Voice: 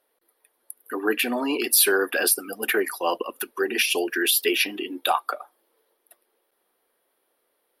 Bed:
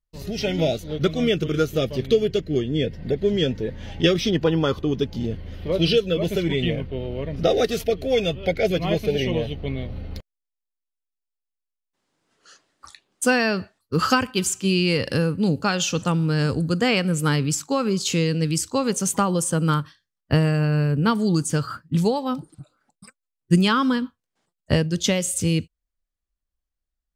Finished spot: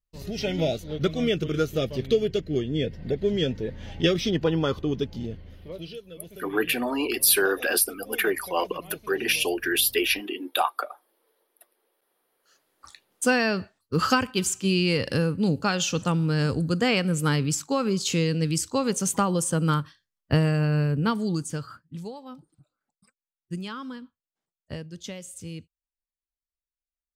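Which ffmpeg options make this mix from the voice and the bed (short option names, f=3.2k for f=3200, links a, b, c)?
-filter_complex "[0:a]adelay=5500,volume=-1.5dB[a];[1:a]volume=15dB,afade=t=out:st=4.92:d=0.96:silence=0.133352,afade=t=in:st=12.4:d=0.56:silence=0.11885,afade=t=out:st=20.79:d=1.15:silence=0.199526[b];[a][b]amix=inputs=2:normalize=0"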